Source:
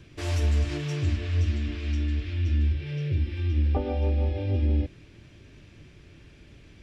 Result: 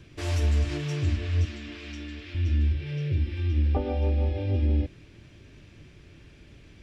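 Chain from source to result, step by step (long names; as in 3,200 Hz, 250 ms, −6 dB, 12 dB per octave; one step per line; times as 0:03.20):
0:01.45–0:02.35: high-pass filter 410 Hz 6 dB per octave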